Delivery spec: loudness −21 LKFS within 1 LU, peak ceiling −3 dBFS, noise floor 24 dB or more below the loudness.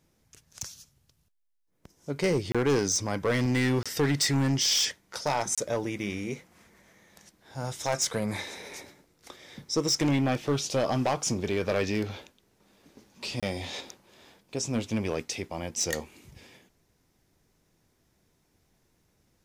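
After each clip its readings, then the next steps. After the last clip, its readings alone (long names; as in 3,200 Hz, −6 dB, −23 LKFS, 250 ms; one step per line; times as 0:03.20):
share of clipped samples 1.3%; peaks flattened at −20.0 dBFS; number of dropouts 4; longest dropout 26 ms; integrated loudness −28.5 LKFS; sample peak −20.0 dBFS; target loudness −21.0 LKFS
→ clipped peaks rebuilt −20 dBFS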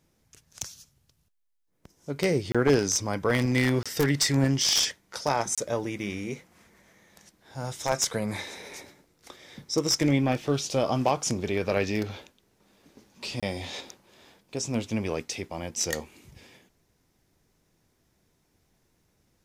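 share of clipped samples 0.0%; number of dropouts 4; longest dropout 26 ms
→ repair the gap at 0:02.52/0:03.83/0:05.55/0:13.40, 26 ms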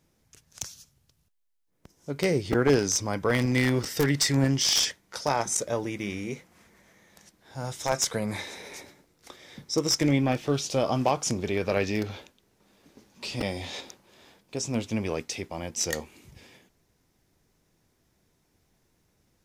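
number of dropouts 0; integrated loudness −27.5 LKFS; sample peak −11.0 dBFS; target loudness −21.0 LKFS
→ level +6.5 dB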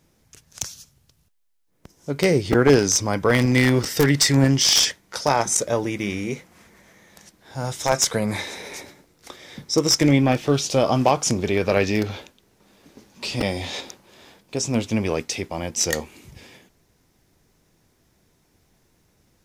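integrated loudness −21.0 LKFS; sample peak −4.5 dBFS; background noise floor −64 dBFS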